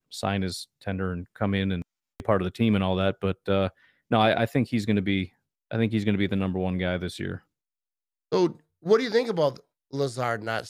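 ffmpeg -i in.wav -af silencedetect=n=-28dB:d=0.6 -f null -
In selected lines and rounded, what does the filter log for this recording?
silence_start: 7.35
silence_end: 8.32 | silence_duration: 0.97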